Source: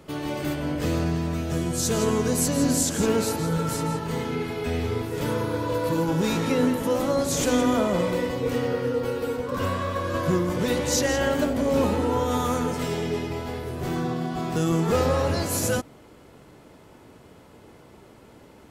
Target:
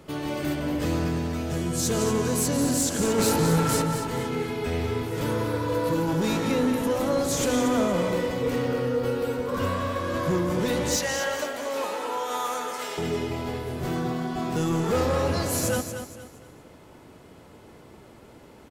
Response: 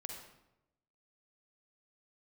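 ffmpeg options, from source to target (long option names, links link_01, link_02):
-filter_complex "[0:a]asettb=1/sr,asplit=3[link_01][link_02][link_03];[link_01]atrim=end=3.184[link_04];[link_02]atrim=start=3.18:end=3.82,asetpts=PTS-STARTPTS,afade=type=in:duration=0.004:curve=qsin,afade=type=out:start_time=0.636:duration=0.004:curve=qsin,acontrast=75[link_05];[link_03]atrim=start=3.816[link_06];[link_04][link_05]acrossfade=duration=0.004:curve1=hsin:curve2=qsin[link_07];[link_07][link_06]acrossfade=duration=0.004:curve1=qsin:curve2=hsin,asettb=1/sr,asplit=3[link_08][link_09][link_10];[link_08]atrim=end=10.964[link_11];[link_09]atrim=start=10.96:end=12.98,asetpts=PTS-STARTPTS,afade=type=in:duration=0.004:curve=qsin,afade=type=out:start_time=2.016:duration=0.004:curve=qsin,highpass=680[link_12];[link_10]atrim=start=12.976[link_13];[link_11][link_12]acrossfade=duration=0.004:curve1=hsin:curve2=qsin[link_14];[link_14][link_13]acrossfade=duration=0.004:curve1=qsin:curve2=hsin,asoftclip=type=tanh:threshold=-17dB,aecho=1:1:234|468|702|936:0.355|0.124|0.0435|0.0152"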